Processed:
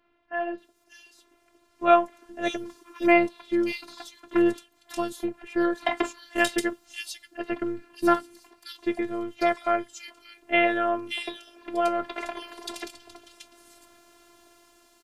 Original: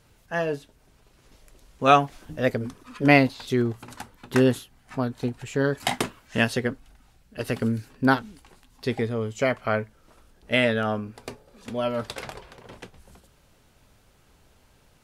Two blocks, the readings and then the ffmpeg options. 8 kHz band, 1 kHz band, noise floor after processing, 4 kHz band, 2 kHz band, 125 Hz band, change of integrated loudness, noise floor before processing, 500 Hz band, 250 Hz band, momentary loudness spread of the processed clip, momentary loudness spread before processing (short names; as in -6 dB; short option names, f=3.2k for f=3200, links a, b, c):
-0.5 dB, 0.0 dB, -65 dBFS, -2.5 dB, -2.0 dB, -20.0 dB, -2.0 dB, -60 dBFS, -1.0 dB, -1.5 dB, 18 LU, 20 LU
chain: -filter_complex "[0:a]highpass=150,highshelf=f=11k:g=-4.5,dynaudnorm=f=600:g=5:m=11.5dB,acrossover=split=3100[a][b];[b]adelay=580[c];[a][c]amix=inputs=2:normalize=0,afftfilt=real='hypot(re,im)*cos(PI*b)':imag='0':win_size=512:overlap=0.75"